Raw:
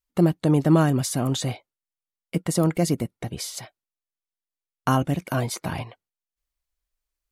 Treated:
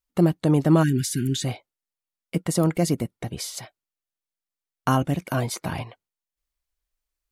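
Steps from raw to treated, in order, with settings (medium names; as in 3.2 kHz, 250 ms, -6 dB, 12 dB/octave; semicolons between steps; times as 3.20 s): spectral selection erased 0.83–1.44 s, 430–1400 Hz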